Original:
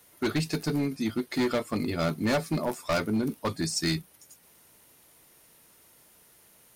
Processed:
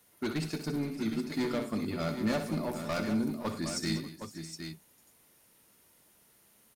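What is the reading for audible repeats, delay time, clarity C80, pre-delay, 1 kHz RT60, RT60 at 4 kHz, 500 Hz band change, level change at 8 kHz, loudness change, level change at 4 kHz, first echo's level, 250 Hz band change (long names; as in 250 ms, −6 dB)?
6, 62 ms, no reverb audible, no reverb audible, no reverb audible, no reverb audible, −5.5 dB, −5.5 dB, −5.0 dB, −5.5 dB, −9.0 dB, −3.0 dB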